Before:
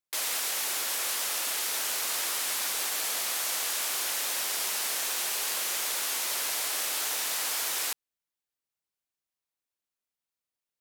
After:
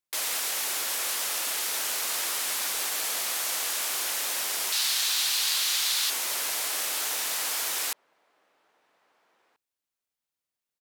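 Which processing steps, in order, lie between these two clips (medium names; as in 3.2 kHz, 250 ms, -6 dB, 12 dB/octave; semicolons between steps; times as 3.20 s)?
4.72–6.10 s: graphic EQ 250/500/4000 Hz -6/-10/+10 dB; echo from a far wall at 280 m, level -26 dB; trim +1 dB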